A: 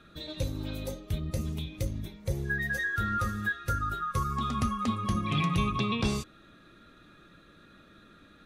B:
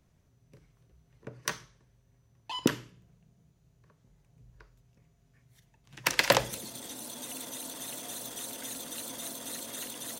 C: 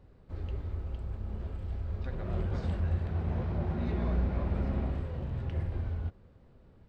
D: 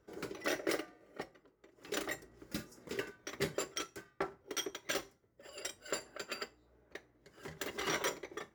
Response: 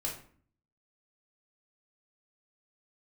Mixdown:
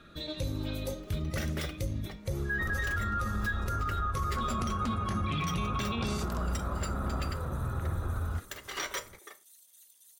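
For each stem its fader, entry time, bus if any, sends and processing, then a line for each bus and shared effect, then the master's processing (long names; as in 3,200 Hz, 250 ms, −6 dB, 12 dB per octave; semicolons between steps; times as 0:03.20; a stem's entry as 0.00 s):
+0.5 dB, 0.00 s, send −15.5 dB, no processing
−18.5 dB, 0.00 s, no send, first-order pre-emphasis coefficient 0.97
0.0 dB, 2.30 s, no send, speech leveller; low-pass with resonance 1,300 Hz, resonance Q 9.4
+2.5 dB, 0.90 s, send −14.5 dB, high-pass filter 890 Hz 6 dB per octave; expander for the loud parts 1.5 to 1, over −48 dBFS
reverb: on, RT60 0.50 s, pre-delay 3 ms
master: brickwall limiter −23.5 dBFS, peak gain reduction 11 dB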